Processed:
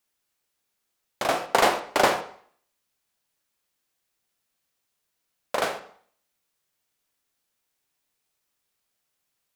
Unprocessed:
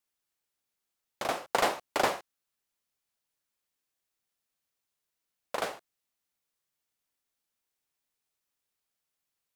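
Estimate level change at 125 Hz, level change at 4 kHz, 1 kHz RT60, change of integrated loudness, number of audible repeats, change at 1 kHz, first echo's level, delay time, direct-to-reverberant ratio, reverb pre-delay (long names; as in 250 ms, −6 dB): +7.5 dB, +7.0 dB, 0.55 s, +7.0 dB, no echo audible, +7.0 dB, no echo audible, no echo audible, 7.0 dB, 6 ms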